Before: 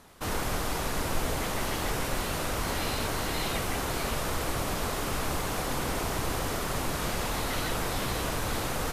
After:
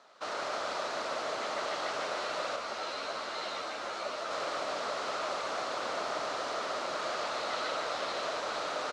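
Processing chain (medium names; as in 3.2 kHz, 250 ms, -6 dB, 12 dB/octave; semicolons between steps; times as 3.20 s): cabinet simulation 450–6400 Hz, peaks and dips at 620 Hz +10 dB, 1.3 kHz +8 dB, 4.2 kHz +5 dB; on a send: frequency-shifting echo 149 ms, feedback 46%, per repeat -39 Hz, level -5.5 dB; 2.56–4.31 s: on the sum: three-phase chorus; trim -6 dB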